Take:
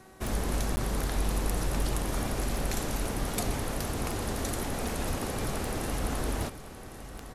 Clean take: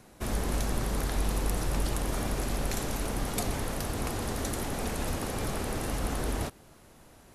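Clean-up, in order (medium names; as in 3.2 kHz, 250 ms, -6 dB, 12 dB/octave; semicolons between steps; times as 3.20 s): de-click; de-hum 378.8 Hz, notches 5; interpolate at 0.76 s, 10 ms; inverse comb 1106 ms -12.5 dB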